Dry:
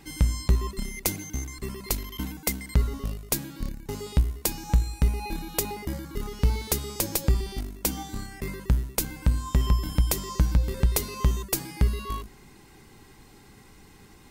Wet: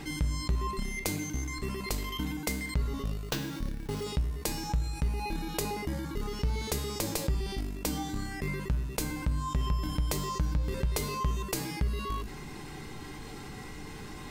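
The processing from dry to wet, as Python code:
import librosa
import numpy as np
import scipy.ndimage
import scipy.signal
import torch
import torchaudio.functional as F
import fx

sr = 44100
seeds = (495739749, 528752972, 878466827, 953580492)

y = fx.high_shelf(x, sr, hz=9400.0, db=-10.5)
y = fx.sample_hold(y, sr, seeds[0], rate_hz=10000.0, jitter_pct=0, at=(3.25, 4.04))
y = fx.comb_fb(y, sr, f0_hz=150.0, decay_s=0.49, harmonics='all', damping=0.0, mix_pct=70)
y = fx.env_flatten(y, sr, amount_pct=50)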